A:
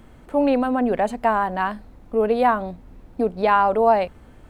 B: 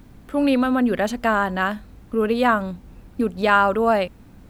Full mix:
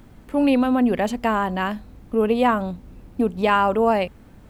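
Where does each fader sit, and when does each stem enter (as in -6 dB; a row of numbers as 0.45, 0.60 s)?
-4.5, -2.5 dB; 0.00, 0.00 s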